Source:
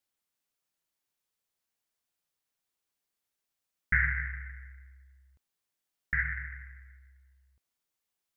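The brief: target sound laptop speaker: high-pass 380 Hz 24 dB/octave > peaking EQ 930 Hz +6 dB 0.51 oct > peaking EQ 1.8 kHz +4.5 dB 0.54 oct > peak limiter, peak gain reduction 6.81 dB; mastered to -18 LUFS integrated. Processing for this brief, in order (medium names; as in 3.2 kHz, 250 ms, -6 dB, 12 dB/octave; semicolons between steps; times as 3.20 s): high-pass 380 Hz 24 dB/octave; peaking EQ 930 Hz +6 dB 0.51 oct; peaking EQ 1.8 kHz +4.5 dB 0.54 oct; trim +12.5 dB; peak limiter -4.5 dBFS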